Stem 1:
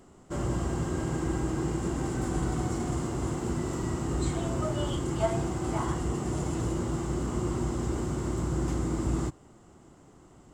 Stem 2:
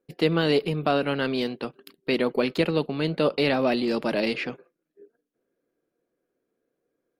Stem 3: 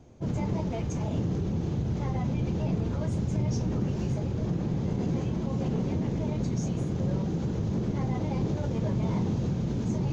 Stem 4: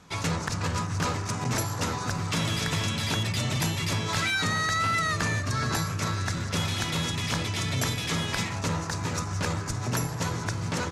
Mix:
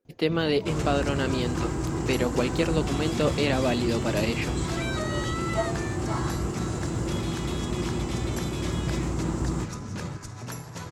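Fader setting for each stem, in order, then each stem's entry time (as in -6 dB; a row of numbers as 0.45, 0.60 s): 0.0, -2.5, -8.5, -8.5 dB; 0.35, 0.00, 0.05, 0.55 s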